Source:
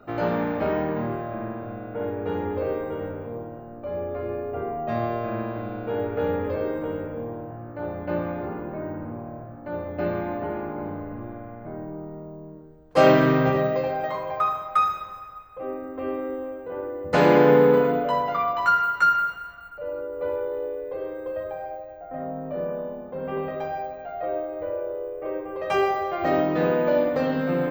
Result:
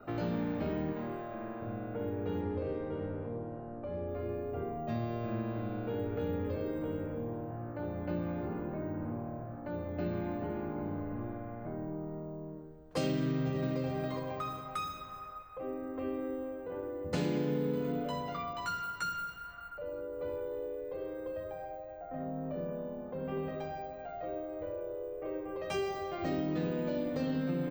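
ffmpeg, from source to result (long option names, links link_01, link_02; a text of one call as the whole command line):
ffmpeg -i in.wav -filter_complex "[0:a]asettb=1/sr,asplit=3[link_01][link_02][link_03];[link_01]atrim=end=0.924[link_04];[link_02]atrim=start=0.92:end=1.62,asetpts=PTS-STARTPTS,afade=type=in:duration=0.004:curve=qsin,afade=type=out:start_time=0.696:duration=0.004:curve=qsin,equalizer=frequency=110:width_type=o:width=2.2:gain=-12.5[link_05];[link_03]atrim=start=1.616[link_06];[link_04][link_05]acrossfade=duration=0.004:curve1=hsin:curve2=qsin[link_07];[link_07][link_06]acrossfade=duration=0.004:curve1=qsin:curve2=hsin,asettb=1/sr,asplit=3[link_08][link_09][link_10];[link_08]atrim=end=2.414[link_11];[link_09]atrim=start=2.41:end=4.08,asetpts=PTS-STARTPTS,afade=type=in:duration=0.004:curve=qsin,afade=type=out:start_time=1.666:duration=0.004:curve=qsin,adynamicsmooth=sensitivity=3.5:basefreq=3700[link_12];[link_10]atrim=start=4.076[link_13];[link_11][link_12]acrossfade=duration=0.004:curve1=hsin:curve2=qsin[link_14];[link_14][link_13]acrossfade=duration=0.004:curve1=qsin:curve2=hsin,asplit=2[link_15][link_16];[link_16]afade=type=in:start_time=13.21:duration=0.01,afade=type=out:start_time=13.78:duration=0.01,aecho=0:1:410|820|1230|1640:0.421697|0.147594|0.0516578|0.0180802[link_17];[link_15][link_17]amix=inputs=2:normalize=0,acrossover=split=340|3000[link_18][link_19][link_20];[link_19]acompressor=threshold=-41dB:ratio=3[link_21];[link_18][link_21][link_20]amix=inputs=3:normalize=0,adynamicequalizer=threshold=0.00141:dfrequency=9100:dqfactor=1.5:tfrequency=9100:tqfactor=1.5:attack=5:release=100:ratio=0.375:range=3:mode=boostabove:tftype=bell,acompressor=threshold=-27dB:ratio=4,volume=-2.5dB" out.wav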